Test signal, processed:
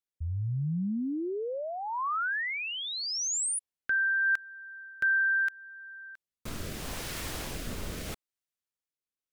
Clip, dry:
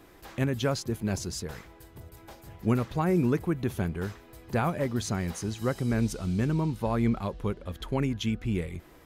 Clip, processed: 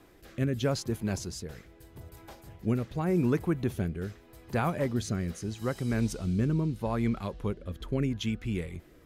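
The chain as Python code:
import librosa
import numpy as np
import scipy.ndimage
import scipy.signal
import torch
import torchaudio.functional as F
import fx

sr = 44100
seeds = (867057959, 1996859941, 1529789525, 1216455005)

y = fx.rotary(x, sr, hz=0.8)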